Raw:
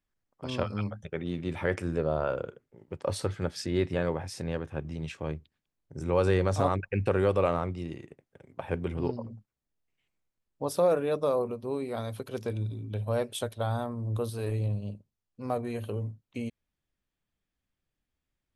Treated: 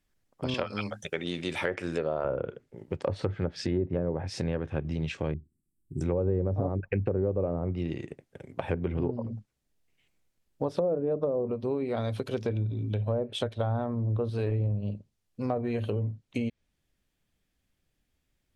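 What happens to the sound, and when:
0.54–2.25 RIAA curve recording
5.34–6.01 Chebyshev band-stop 370–7900 Hz, order 5
whole clip: treble ducked by the level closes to 540 Hz, closed at -23 dBFS; bell 1100 Hz -4.5 dB 1 oct; compressor 2.5:1, threshold -37 dBFS; gain +8.5 dB

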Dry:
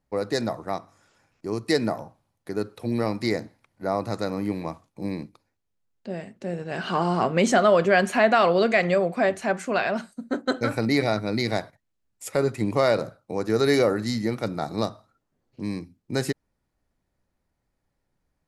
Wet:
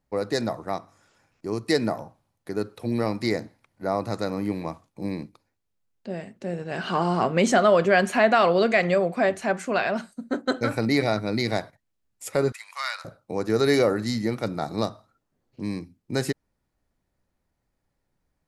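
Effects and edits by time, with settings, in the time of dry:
12.52–13.05 inverse Chebyshev high-pass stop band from 350 Hz, stop band 60 dB

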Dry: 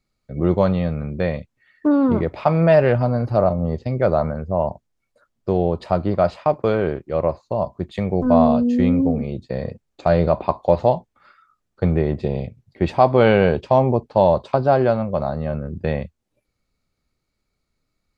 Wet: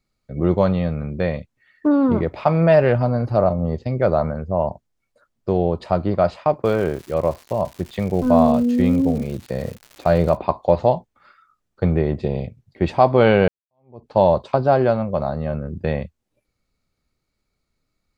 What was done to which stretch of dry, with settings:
6.64–10.35 crackle 280/s -31 dBFS
13.48–14.09 fade in exponential

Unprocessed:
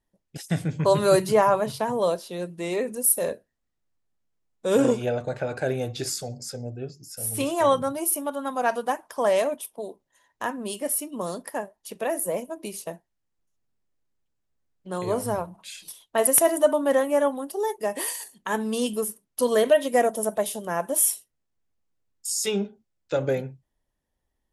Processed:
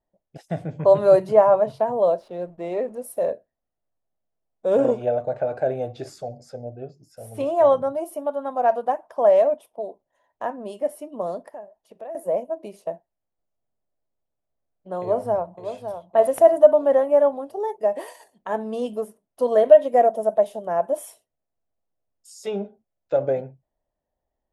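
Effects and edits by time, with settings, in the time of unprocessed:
2.2–3.17 backlash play -42 dBFS
11.48–12.15 compressor 2.5:1, threshold -44 dBFS
15.01–15.9 echo throw 0.56 s, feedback 40%, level -9 dB
whole clip: LPF 1500 Hz 6 dB/oct; bell 650 Hz +13.5 dB 0.81 oct; gain -4.5 dB

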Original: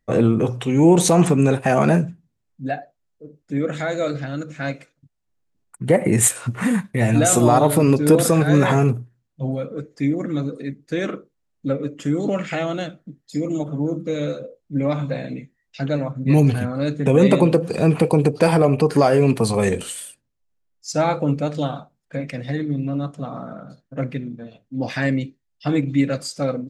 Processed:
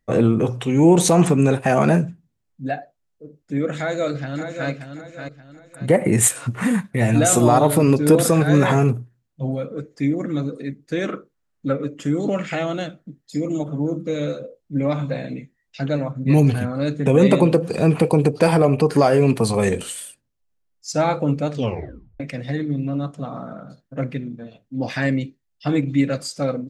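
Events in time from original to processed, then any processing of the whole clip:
3.77–4.7 echo throw 0.58 s, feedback 35%, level -8 dB
11.12–11.85 bell 1400 Hz +6.5 dB 0.88 oct
21.53 tape stop 0.67 s

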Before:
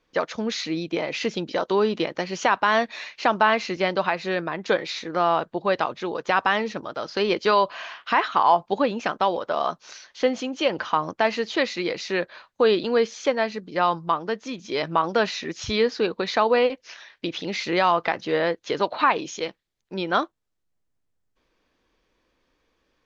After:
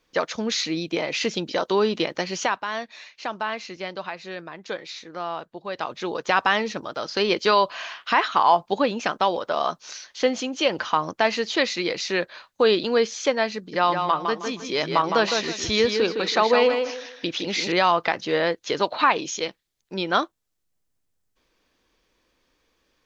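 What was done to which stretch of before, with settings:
2.3–6.06 dip -10 dB, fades 0.34 s linear
13.57–17.72 tape echo 0.159 s, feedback 30%, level -4.5 dB, low-pass 4700 Hz
whole clip: high shelf 4000 Hz +9 dB

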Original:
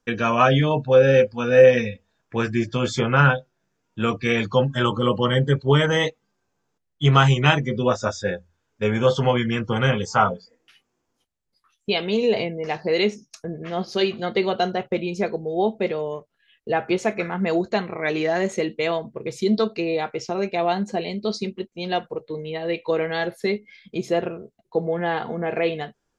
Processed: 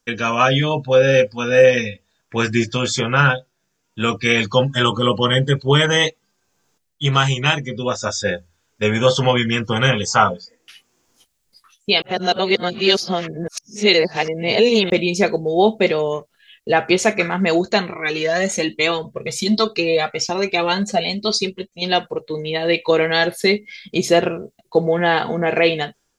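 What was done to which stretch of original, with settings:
12.02–14.9 reverse
17.92–21.82 cascading flanger rising 1.2 Hz
whole clip: high shelf 2600 Hz +11.5 dB; AGC; gain -1 dB

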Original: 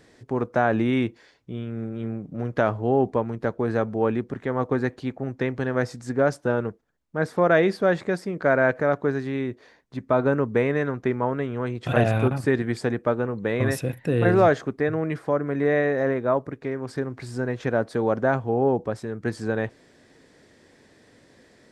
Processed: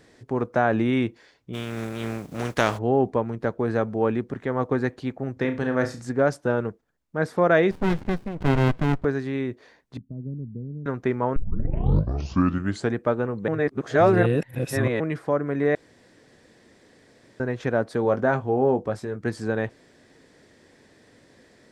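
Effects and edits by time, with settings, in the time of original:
1.53–2.77 spectral contrast lowered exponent 0.56
5.33–6.08 flutter echo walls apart 6 m, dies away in 0.28 s
7.71–9.05 running maximum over 65 samples
9.97–10.86 ladder low-pass 250 Hz, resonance 20%
11.36 tape start 1.58 s
13.48–15 reverse
15.75–17.4 room tone
18.03–19.16 doubler 20 ms -9 dB

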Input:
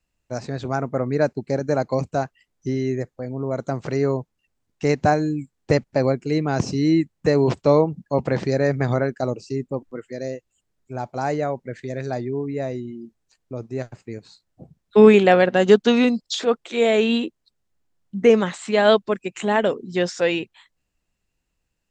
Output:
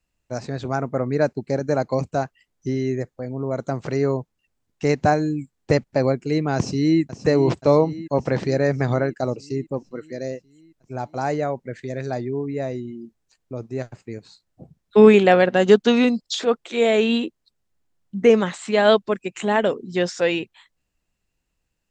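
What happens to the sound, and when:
6.56–7.01 echo throw 0.53 s, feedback 65%, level -12.5 dB

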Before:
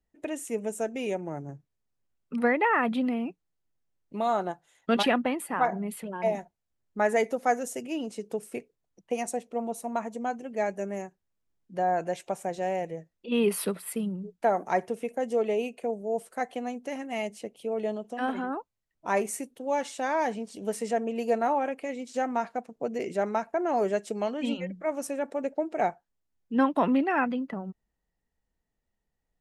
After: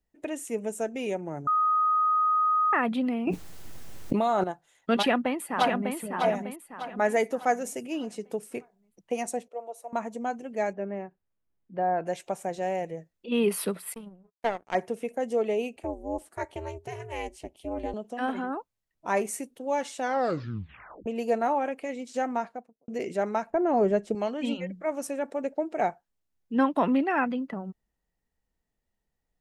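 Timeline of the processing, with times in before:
1.47–2.73 bleep 1250 Hz -20.5 dBFS
3.27–4.44 fast leveller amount 100%
4.97–5.95 echo throw 0.6 s, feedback 40%, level -4.5 dB
9.48–9.93 ladder high-pass 440 Hz, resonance 45%
10.73–12.06 Gaussian blur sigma 2.8 samples
13.94–14.75 power-law curve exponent 2
15.76–17.94 ring modulator 160 Hz
20.01 tape stop 1.05 s
22.28–22.88 studio fade out
23.5–24.15 tilt -3 dB/oct

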